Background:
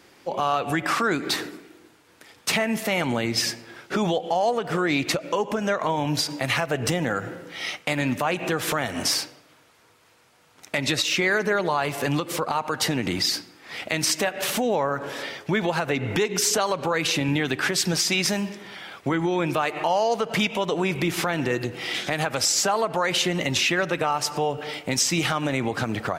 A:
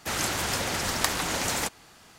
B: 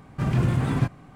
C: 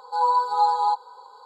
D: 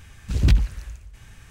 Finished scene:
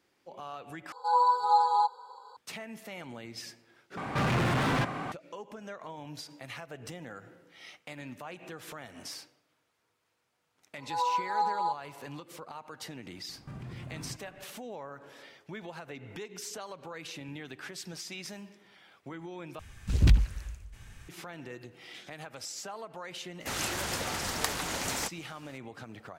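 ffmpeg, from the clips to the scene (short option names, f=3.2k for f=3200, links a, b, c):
-filter_complex "[3:a]asplit=2[a][b];[2:a]asplit=2[c][d];[0:a]volume=-19dB[e];[c]asplit=2[f][g];[g]highpass=f=720:p=1,volume=36dB,asoftclip=type=tanh:threshold=-11dB[h];[f][h]amix=inputs=2:normalize=0,lowpass=f=2.7k:p=1,volume=-6dB[i];[d]acompressor=threshold=-31dB:ratio=6:attack=3.2:release=140:knee=1:detection=peak[j];[e]asplit=4[k][l][m][n];[k]atrim=end=0.924[o];[a]atrim=end=1.45,asetpts=PTS-STARTPTS,volume=-3.5dB[p];[l]atrim=start=2.366:end=3.974[q];[i]atrim=end=1.15,asetpts=PTS-STARTPTS,volume=-9.5dB[r];[m]atrim=start=5.116:end=19.594[s];[4:a]atrim=end=1.5,asetpts=PTS-STARTPTS,volume=-4dB[t];[n]atrim=start=21.086[u];[b]atrim=end=1.45,asetpts=PTS-STARTPTS,volume=-9dB,afade=t=in:d=0.004:c=hsin,afade=t=out:st=1.446:d=0.004:c=hsin,adelay=10780[v];[j]atrim=end=1.15,asetpts=PTS-STARTPTS,volume=-9dB,afade=t=in:d=0.004:c=hsin,afade=t=out:st=1.146:d=0.004:c=hsin,adelay=13290[w];[1:a]atrim=end=2.18,asetpts=PTS-STARTPTS,volume=-5.5dB,afade=t=in:d=0.004:c=hsin,afade=t=out:st=2.176:d=0.004:c=hsin,adelay=1031940S[x];[o][p]acrossfade=d=0.004:c1=hsin:c2=hsin[y];[y][q]acrossfade=d=0.004:c1=hsin:c2=hsin[z];[z][r]acrossfade=d=0.004:c1=hsin:c2=hsin[aa];[aa][s]acrossfade=d=0.004:c1=hsin:c2=hsin[ab];[ab][t]acrossfade=d=0.004:c1=hsin:c2=hsin[ac];[ac][u]acrossfade=d=0.004:c1=hsin:c2=hsin[ad];[ad][v][w][x]amix=inputs=4:normalize=0"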